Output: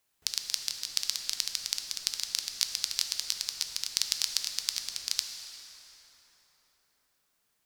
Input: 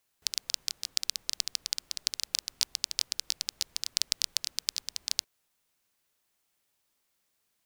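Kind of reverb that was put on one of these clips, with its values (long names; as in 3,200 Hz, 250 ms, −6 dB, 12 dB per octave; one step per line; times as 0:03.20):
dense smooth reverb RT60 4.7 s, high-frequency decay 0.55×, DRR 4 dB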